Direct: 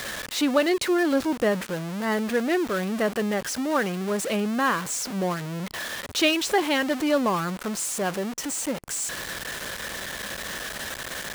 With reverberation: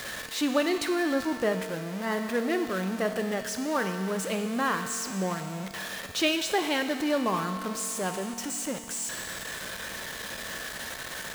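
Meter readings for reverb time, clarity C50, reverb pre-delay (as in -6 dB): 2.3 s, 7.0 dB, 4 ms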